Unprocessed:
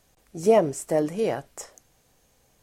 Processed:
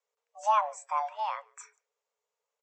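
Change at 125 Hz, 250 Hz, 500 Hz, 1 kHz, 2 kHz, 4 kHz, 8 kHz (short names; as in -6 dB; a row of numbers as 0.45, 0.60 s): under -40 dB, under -40 dB, -17.5 dB, +4.5 dB, -3.5 dB, -5.0 dB, -10.0 dB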